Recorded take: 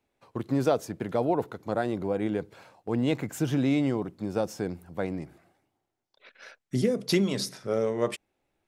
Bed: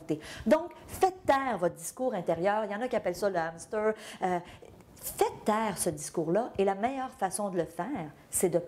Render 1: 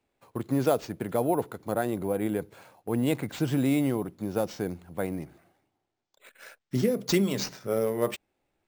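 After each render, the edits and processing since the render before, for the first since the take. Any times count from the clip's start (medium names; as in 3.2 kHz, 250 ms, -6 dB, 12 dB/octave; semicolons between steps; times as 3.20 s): sample-and-hold 4×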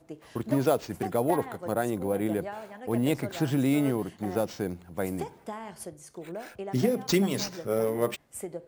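add bed -10.5 dB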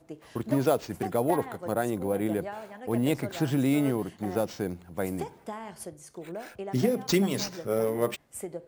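no audible change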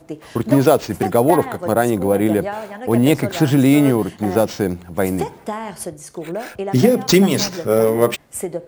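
trim +12 dB; peak limiter -1 dBFS, peak gain reduction 1.5 dB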